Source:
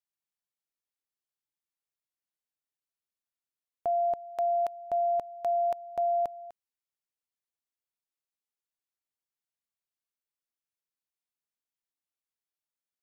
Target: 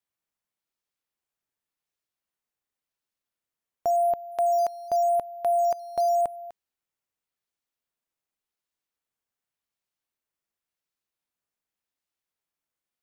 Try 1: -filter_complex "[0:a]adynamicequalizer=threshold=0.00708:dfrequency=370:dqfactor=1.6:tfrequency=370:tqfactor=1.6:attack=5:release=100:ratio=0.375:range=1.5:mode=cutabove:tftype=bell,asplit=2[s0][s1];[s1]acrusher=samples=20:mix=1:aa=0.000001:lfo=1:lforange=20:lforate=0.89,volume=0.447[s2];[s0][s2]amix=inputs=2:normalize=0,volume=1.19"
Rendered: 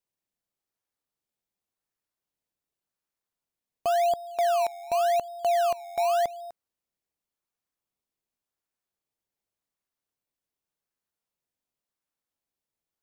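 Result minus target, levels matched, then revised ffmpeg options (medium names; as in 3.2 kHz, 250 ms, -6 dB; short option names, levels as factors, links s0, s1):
decimation with a swept rate: distortion +15 dB
-filter_complex "[0:a]adynamicequalizer=threshold=0.00708:dfrequency=370:dqfactor=1.6:tfrequency=370:tqfactor=1.6:attack=5:release=100:ratio=0.375:range=1.5:mode=cutabove:tftype=bell,asplit=2[s0][s1];[s1]acrusher=samples=6:mix=1:aa=0.000001:lfo=1:lforange=6:lforate=0.89,volume=0.447[s2];[s0][s2]amix=inputs=2:normalize=0,volume=1.19"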